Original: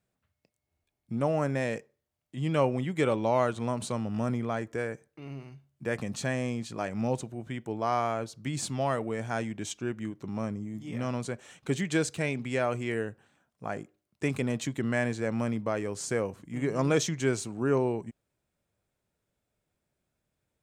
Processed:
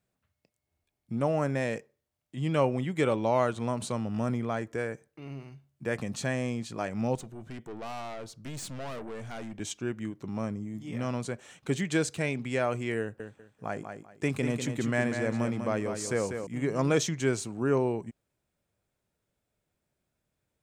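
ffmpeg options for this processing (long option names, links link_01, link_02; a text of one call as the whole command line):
ffmpeg -i in.wav -filter_complex "[0:a]asettb=1/sr,asplit=3[link_01][link_02][link_03];[link_01]atrim=end=7.154[link_04];[link_02]atrim=start=7.15:end=9.6,asetpts=PTS-STARTPTS,afade=type=in:duration=0.004:curve=qsin,afade=type=out:start_time=2.446:duration=0.004:curve=qsin,aeval=exprs='(tanh(63.1*val(0)+0.35)-tanh(0.35))/63.1':channel_layout=same[link_05];[link_03]atrim=start=9.596[link_06];[link_04][link_05]acrossfade=duration=0.004:curve1=hsin:curve2=qsin[link_07];[link_07][link_06]acrossfade=duration=0.004:curve1=qsin:curve2=hsin,asettb=1/sr,asplit=3[link_08][link_09][link_10];[link_08]atrim=end=13.004[link_11];[link_09]atrim=start=13:end=16.47,asetpts=PTS-STARTPTS,afade=type=in:duration=0.004:curve=qsin,afade=type=out:start_time=3.466:duration=0.004:curve=qsin,aecho=1:1:195|390|585:0.447|0.103|0.0236,atrim=end_sample=153027[link_12];[link_10]atrim=start=16.466[link_13];[link_11][link_12]acrossfade=duration=0.004:curve1=hsin:curve2=qsin[link_14];[link_14][link_13]acrossfade=duration=0.004:curve1=qsin:curve2=hsin" out.wav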